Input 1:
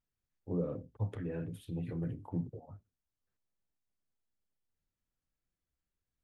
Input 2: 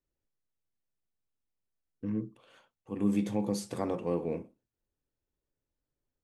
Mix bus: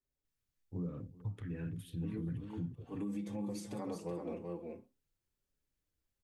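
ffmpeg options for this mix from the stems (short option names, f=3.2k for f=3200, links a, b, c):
-filter_complex "[0:a]equalizer=f=580:t=o:w=1.5:g=-13.5,adelay=250,volume=1.5dB,asplit=2[a][b];[b]volume=-22.5dB[c];[1:a]asplit=2[d][e];[e]adelay=5.1,afreqshift=1.1[f];[d][f]amix=inputs=2:normalize=1,volume=-2dB,asplit=2[g][h];[h]volume=-6.5dB[i];[c][i]amix=inputs=2:normalize=0,aecho=0:1:379:1[j];[a][g][j]amix=inputs=3:normalize=0,alimiter=level_in=7dB:limit=-24dB:level=0:latency=1:release=264,volume=-7dB"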